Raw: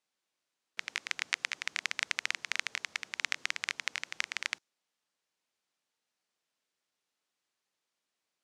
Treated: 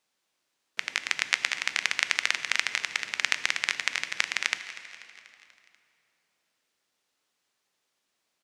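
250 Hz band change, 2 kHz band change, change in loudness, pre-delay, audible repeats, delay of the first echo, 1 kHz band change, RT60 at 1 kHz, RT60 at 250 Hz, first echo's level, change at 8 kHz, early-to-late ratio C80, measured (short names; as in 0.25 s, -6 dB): +7.5 dB, +7.5 dB, +7.5 dB, 5 ms, 4, 0.243 s, +7.5 dB, 2.7 s, 3.4 s, -16.5 dB, +7.5 dB, 10.5 dB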